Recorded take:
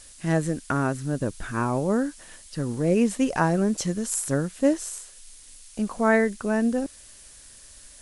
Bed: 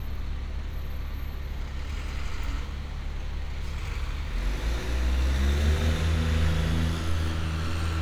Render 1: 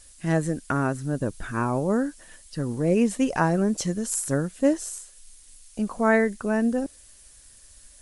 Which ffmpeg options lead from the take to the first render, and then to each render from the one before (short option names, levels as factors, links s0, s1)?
-af "afftdn=nr=6:nf=-49"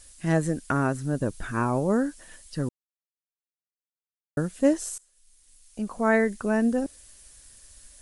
-filter_complex "[0:a]asplit=4[s0][s1][s2][s3];[s0]atrim=end=2.69,asetpts=PTS-STARTPTS,afade=t=out:st=2.686:d=0.004:c=hsin[s4];[s1]atrim=start=2.69:end=4.37,asetpts=PTS-STARTPTS,volume=0[s5];[s2]atrim=start=4.37:end=4.98,asetpts=PTS-STARTPTS,afade=t=in:d=0.004:c=hsin,afade=t=out:st=0.606:d=0.004:c=hsin:silence=0.0944061[s6];[s3]atrim=start=4.98,asetpts=PTS-STARTPTS,afade=t=in:d=1.41:silence=0.0944061[s7];[s4][s5][s6][s7]concat=n=4:v=0:a=1"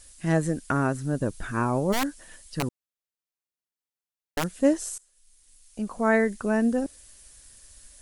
-filter_complex "[0:a]asplit=3[s0][s1][s2];[s0]afade=t=out:st=1.92:d=0.02[s3];[s1]aeval=exprs='(mod(8.91*val(0)+1,2)-1)/8.91':c=same,afade=t=in:st=1.92:d=0.02,afade=t=out:st=4.59:d=0.02[s4];[s2]afade=t=in:st=4.59:d=0.02[s5];[s3][s4][s5]amix=inputs=3:normalize=0"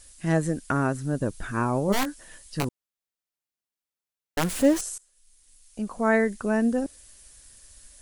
-filter_complex "[0:a]asettb=1/sr,asplit=3[s0][s1][s2];[s0]atrim=end=1.864[s3];[s1]atrim=start=1.86:end=2.65,asetpts=PTS-STARTPTS,afade=t=in:d=0.004:c=qsin,afade=t=out:st=0.786:d=0.004:c=qsin,asplit=2[s4][s5];[s5]adelay=20,volume=0.422[s6];[s4][s6]amix=inputs=2:normalize=0,atrim=end_sample=34839[s7];[s2]atrim=start=2.646[s8];[s3][s7]acrossfade=d=0.004:c1=hsin:c2=qsin[s9];[s9][s8]acrossfade=d=0.004:c1=qsin:c2=hsin,asettb=1/sr,asplit=3[s10][s11][s12];[s10]atrim=end=4.384[s13];[s11]atrim=start=4.38:end=4.81,asetpts=PTS-STARTPTS,afade=t=in:d=0.004:c=qsin,afade=t=out:st=0.426:d=0.004:c=qsin,aeval=exprs='val(0)+0.5*0.0422*sgn(val(0))':c=same[s14];[s12]atrim=start=4.806[s15];[s13][s14]acrossfade=d=0.004:c1=hsin:c2=qsin[s16];[s16][s15]acrossfade=d=0.004:c1=qsin:c2=hsin"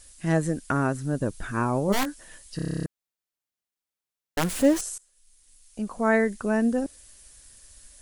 -filter_complex "[0:a]asplit=11[s0][s1][s2][s3][s4][s5][s6][s7][s8][s9][s10];[s0]atrim=end=2.592[s11];[s1]atrim=start=2.558:end=2.592[s12];[s2]atrim=start=2.558:end=2.592[s13];[s3]atrim=start=2.558:end=2.592[s14];[s4]atrim=start=2.558:end=2.592[s15];[s5]atrim=start=2.558:end=2.592[s16];[s6]atrim=start=2.558:end=2.592[s17];[s7]atrim=start=2.558:end=2.592[s18];[s8]atrim=start=2.558:end=2.592[s19];[s9]atrim=start=2.558:end=2.592[s20];[s10]atrim=start=2.858[s21];[s11][s12]acrossfade=d=0.004:c1=hsin:c2=hsin[s22];[s22][s13]acrossfade=d=0.004:c1=hsin:c2=hsin[s23];[s23][s14]acrossfade=d=0.004:c1=hsin:c2=hsin[s24];[s24][s15]acrossfade=d=0.004:c1=hsin:c2=hsin[s25];[s25][s16]acrossfade=d=0.004:c1=hsin:c2=hsin[s26];[s26][s17]acrossfade=d=0.004:c1=hsin:c2=hsin[s27];[s27][s18]acrossfade=d=0.004:c1=hsin:c2=hsin[s28];[s28][s19]acrossfade=d=0.004:c1=hsin:c2=hsin[s29];[s29][s20]acrossfade=d=0.004:c1=hsin:c2=hsin[s30];[s30][s21]acrossfade=d=0.004:c1=hsin:c2=hsin"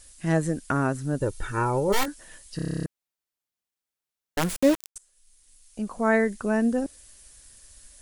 -filter_complex "[0:a]asettb=1/sr,asplit=3[s0][s1][s2];[s0]atrim=end=1.204[s3];[s1]atrim=start=1.2:end=2.08,asetpts=PTS-STARTPTS,afade=t=in:d=0.004:c=qsin,afade=t=out:st=0.876:d=0.004:c=qsin,aecho=1:1:2.2:0.65,atrim=end_sample=38808[s4];[s2]atrim=start=2.076[s5];[s3][s4]acrossfade=d=0.004:c1=hsin:c2=qsin[s6];[s6][s5]acrossfade=d=0.004:c1=qsin:c2=hsin,asettb=1/sr,asplit=3[s7][s8][s9];[s7]atrim=end=4.564[s10];[s8]atrim=start=4.56:end=4.96,asetpts=PTS-STARTPTS,afade=t=in:d=0.004:c=qsin,afade=t=out:st=0.396:d=0.004:c=qsin,aeval=exprs='val(0)*gte(abs(val(0)),0.0708)':c=same[s11];[s9]atrim=start=4.956[s12];[s10][s11]acrossfade=d=0.004:c1=hsin:c2=qsin[s13];[s13][s12]acrossfade=d=0.004:c1=qsin:c2=hsin"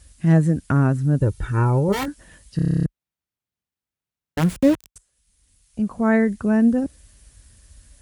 -af "highpass=f=40:w=0.5412,highpass=f=40:w=1.3066,bass=f=250:g=13,treble=f=4000:g=-5"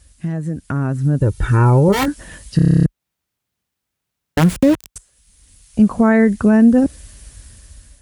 -af "alimiter=limit=0.178:level=0:latency=1:release=255,dynaudnorm=f=440:g=5:m=4.22"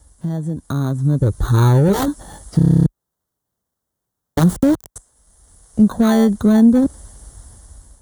-filter_complex "[0:a]acrossover=split=380|1100|5000[s0][s1][s2][s3];[s1]asoftclip=type=tanh:threshold=0.0944[s4];[s2]acrusher=samples=17:mix=1:aa=0.000001[s5];[s0][s4][s5][s3]amix=inputs=4:normalize=0"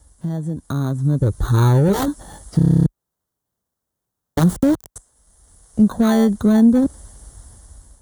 -af "volume=0.841"